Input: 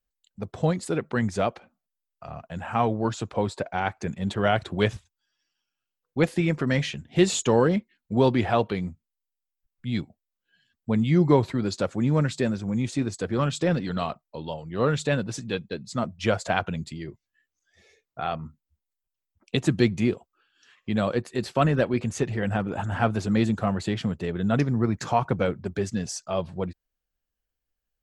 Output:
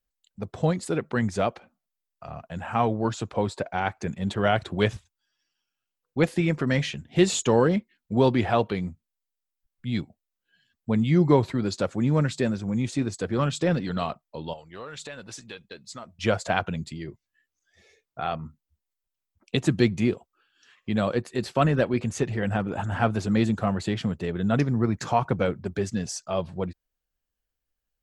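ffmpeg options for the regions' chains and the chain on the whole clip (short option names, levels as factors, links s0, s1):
-filter_complex "[0:a]asettb=1/sr,asplit=3[s0][s1][s2];[s0]atrim=end=14.534[s3];[s1]atrim=start=14.53:end=16.19,asetpts=PTS-STARTPTS,afade=t=in:d=0.004:c=qsin,afade=t=out:st=1.656:d=0.004:c=qsin,equalizer=f=150:w=0.37:g=-14,acompressor=threshold=0.0178:ratio=5:attack=3.2:release=140:knee=1:detection=peak[s4];[s2]atrim=start=16.186[s5];[s3][s4]acrossfade=d=0.004:c1=hsin:c2=qsin[s6];[s6][s5]acrossfade=d=0.004:c1=qsin:c2=hsin"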